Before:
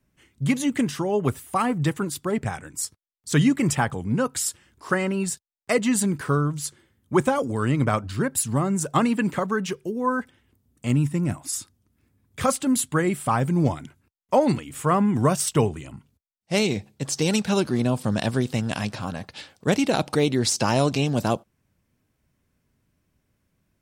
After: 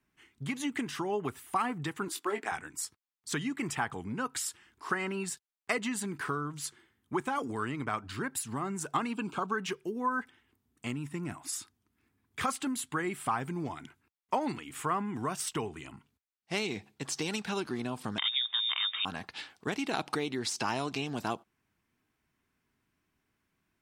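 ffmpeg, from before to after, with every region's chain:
ffmpeg -i in.wav -filter_complex "[0:a]asettb=1/sr,asplit=3[link_01][link_02][link_03];[link_01]atrim=end=2.084[link_04];[link_02]atrim=start=2.08:end=2.52,asetpts=PTS-STARTPTS,afade=type=in:duration=0.004:curve=qsin,afade=type=out:start_time=0.436:duration=0.004:curve=qsin,highpass=frequency=290:width=0.5412,highpass=frequency=290:width=1.3066,asplit=2[link_05][link_06];[link_06]adelay=19,volume=-7dB[link_07];[link_05][link_07]amix=inputs=2:normalize=0,atrim=end_sample=19404[link_08];[link_03]atrim=start=2.516[link_09];[link_04][link_08]acrossfade=duration=0.004:curve1=hsin:curve2=qsin[link_10];[link_10][link_09]acrossfade=duration=0.004:curve1=qsin:curve2=hsin,asettb=1/sr,asplit=3[link_11][link_12][link_13];[link_11]atrim=end=9.134[link_14];[link_12]atrim=start=9.13:end=9.54,asetpts=PTS-STARTPTS,afade=type=in:duration=0.004:curve=qsin,afade=type=out:start_time=0.406:duration=0.004:curve=qsin,asuperstop=centerf=1900:order=4:qfactor=2.4,equalizer=frequency=13000:width_type=o:width=0.5:gain=-11[link_15];[link_13]atrim=start=9.536[link_16];[link_14][link_15]acrossfade=duration=0.004:curve1=hsin:curve2=qsin[link_17];[link_17][link_16]acrossfade=duration=0.004:curve1=qsin:curve2=hsin,asettb=1/sr,asplit=3[link_18][link_19][link_20];[link_18]atrim=end=18.184[link_21];[link_19]atrim=start=18.18:end=19.05,asetpts=PTS-STARTPTS,afade=type=in:duration=0.004:curve=qsin,afade=type=out:start_time=0.866:duration=0.004:curve=qsin,lowpass=frequency=3200:width_type=q:width=0.5098,lowpass=frequency=3200:width_type=q:width=0.6013,lowpass=frequency=3200:width_type=q:width=0.9,lowpass=frequency=3200:width_type=q:width=2.563,afreqshift=-3800,tiltshelf=frequency=1400:gain=-5[link_22];[link_20]atrim=start=19.046[link_23];[link_21][link_22]acrossfade=duration=0.004:curve1=hsin:curve2=qsin[link_24];[link_24][link_23]acrossfade=duration=0.004:curve1=qsin:curve2=hsin,equalizer=frequency=550:width=3.2:gain=-13.5,acompressor=threshold=-25dB:ratio=6,bass=frequency=250:gain=-13,treble=frequency=4000:gain=-7" out.wav

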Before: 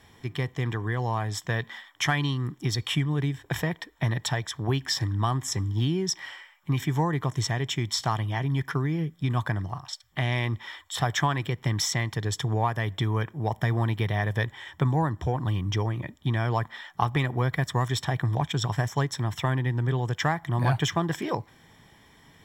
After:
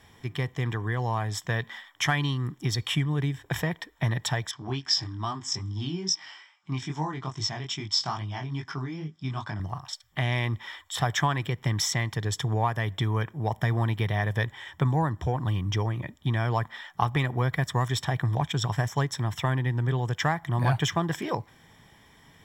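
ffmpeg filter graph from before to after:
ffmpeg -i in.wav -filter_complex "[0:a]asettb=1/sr,asplit=3[link_01][link_02][link_03];[link_01]atrim=end=4.514[link_04];[link_02]atrim=start=4.51:end=9.6,asetpts=PTS-STARTPTS,afade=type=in:duration=0.004:curve=qsin,afade=type=out:start_time=5.086:duration=0.004:curve=qsin,highpass=110,equalizer=frequency=140:width_type=q:width=4:gain=-4,equalizer=frequency=500:width_type=q:width=4:gain=-10,equalizer=frequency=1800:width_type=q:width=4:gain=-5,equalizer=frequency=5100:width_type=q:width=4:gain=9,lowpass=frequency=7500:width=0.5412,lowpass=frequency=7500:width=1.3066,flanger=delay=19.5:depth=3.8:speed=2.4[link_05];[link_03]atrim=start=9.596[link_06];[link_04][link_05]acrossfade=duration=0.004:curve1=hsin:curve2=qsin[link_07];[link_07][link_06]acrossfade=duration=0.004:curve1=qsin:curve2=hsin,equalizer=frequency=320:width=1.5:gain=-2,bandreject=frequency=4200:width=26" out.wav

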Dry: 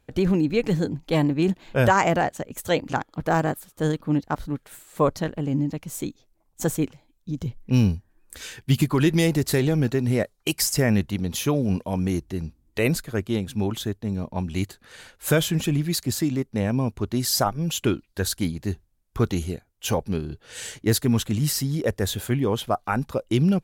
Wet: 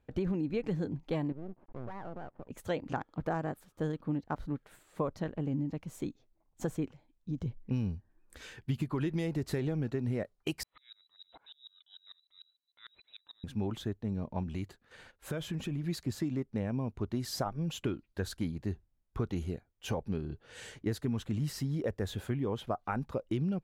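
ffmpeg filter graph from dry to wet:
ffmpeg -i in.wav -filter_complex "[0:a]asettb=1/sr,asplit=3[link_01][link_02][link_03];[link_01]atrim=end=1.324[link_04];[link_02]atrim=start=1.32:end=2.49,asetpts=PTS-STARTPTS,afade=type=in:duration=0.004:curve=qsin,afade=type=out:start_time=1.166:duration=0.004:curve=qsin,lowpass=frequency=1100:width=0.5412,lowpass=frequency=1100:width=1.3066,acompressor=threshold=-32dB:ratio=4:attack=3.2:release=140:knee=1:detection=peak,aeval=exprs='max(val(0),0)':channel_layout=same[link_05];[link_03]atrim=start=2.486[link_06];[link_04][link_05]acrossfade=duration=0.004:curve1=hsin:curve2=qsin[link_07];[link_07][link_06]acrossfade=duration=0.004:curve1=qsin:curve2=hsin,asettb=1/sr,asplit=3[link_08][link_09][link_10];[link_08]atrim=end=10.634[link_11];[link_09]atrim=start=10.63:end=13.44,asetpts=PTS-STARTPTS,afade=type=in:duration=0.004:curve=qsin,afade=type=out:start_time=2.806:duration=0.004:curve=qsin,acompressor=threshold=-31dB:ratio=8:attack=3.2:release=140:knee=1:detection=peak,lowpass=frequency=3400:width_type=q:width=0.5098,lowpass=frequency=3400:width_type=q:width=0.6013,lowpass=frequency=3400:width_type=q:width=0.9,lowpass=frequency=3400:width_type=q:width=2.563,afreqshift=-4000,aeval=exprs='val(0)*pow(10,-33*if(lt(mod(-6.7*n/s,1),2*abs(-6.7)/1000),1-mod(-6.7*n/s,1)/(2*abs(-6.7)/1000),(mod(-6.7*n/s,1)-2*abs(-6.7)/1000)/(1-2*abs(-6.7)/1000))/20)':channel_layout=same[link_12];[link_10]atrim=start=13.436[link_13];[link_11][link_12]acrossfade=duration=0.004:curve1=hsin:curve2=qsin[link_14];[link_14][link_13]acrossfade=duration=0.004:curve1=qsin:curve2=hsin,asettb=1/sr,asplit=3[link_15][link_16][link_17];[link_15]atrim=end=14.434[link_18];[link_16]atrim=start=14.43:end=15.84,asetpts=PTS-STARTPTS,afade=type=in:duration=0.004:curve=qsin,afade=type=out:start_time=1.406:duration=0.004:curve=qsin,agate=range=-8dB:threshold=-50dB:ratio=16:release=100:detection=peak,acompressor=threshold=-26dB:ratio=4:attack=3.2:release=140:knee=1:detection=peak[link_19];[link_17]atrim=start=15.836[link_20];[link_18][link_19]acrossfade=duration=0.004:curve1=hsin:curve2=qsin[link_21];[link_21][link_20]acrossfade=duration=0.004:curve1=qsin:curve2=hsin,highshelf=frequency=3300:gain=-11,acompressor=threshold=-23dB:ratio=6,highshelf=frequency=10000:gain=-6,volume=-6dB" out.wav

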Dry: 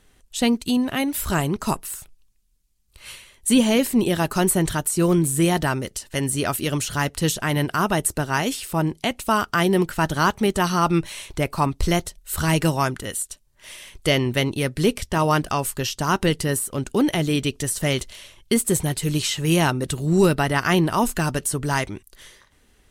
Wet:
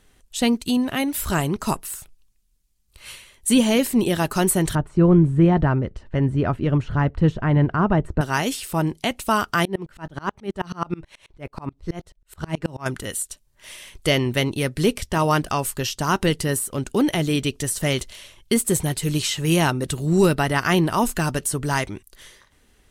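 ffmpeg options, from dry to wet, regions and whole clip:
ffmpeg -i in.wav -filter_complex "[0:a]asettb=1/sr,asplit=3[link_01][link_02][link_03];[link_01]atrim=end=4.754[link_04];[link_02]atrim=start=4.75:end=8.21,asetpts=PTS-STARTPTS,afade=type=in:duration=0.004:curve=qsin,afade=type=out:start_time=3.456:duration=0.004:curve=qsin,lowpass=1500,lowshelf=frequency=170:gain=11.5[link_05];[link_03]atrim=start=8.206[link_06];[link_04][link_05]acrossfade=duration=0.004:curve1=hsin:curve2=qsin[link_07];[link_07][link_06]acrossfade=duration=0.004:curve1=qsin:curve2=hsin,asettb=1/sr,asplit=3[link_08][link_09][link_10];[link_08]atrim=end=9.654[link_11];[link_09]atrim=start=9.65:end=12.86,asetpts=PTS-STARTPTS,afade=type=in:duration=0.004:curve=qsin,afade=type=out:start_time=3.206:duration=0.004:curve=qsin,aemphasis=mode=reproduction:type=75kf,aeval=exprs='val(0)*pow(10,-31*if(lt(mod(-9.3*n/s,1),2*abs(-9.3)/1000),1-mod(-9.3*n/s,1)/(2*abs(-9.3)/1000),(mod(-9.3*n/s,1)-2*abs(-9.3)/1000)/(1-2*abs(-9.3)/1000))/20)':channel_layout=same[link_12];[link_10]atrim=start=12.856[link_13];[link_11][link_12]acrossfade=duration=0.004:curve1=hsin:curve2=qsin[link_14];[link_14][link_13]acrossfade=duration=0.004:curve1=qsin:curve2=hsin" out.wav

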